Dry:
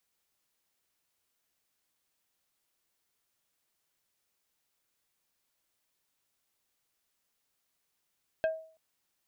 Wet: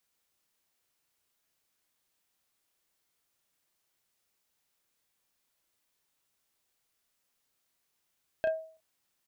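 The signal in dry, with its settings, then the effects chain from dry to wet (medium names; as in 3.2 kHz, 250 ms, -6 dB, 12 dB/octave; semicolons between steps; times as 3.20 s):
wood hit plate, length 0.33 s, lowest mode 641 Hz, decay 0.46 s, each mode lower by 8 dB, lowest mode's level -23 dB
doubling 33 ms -6 dB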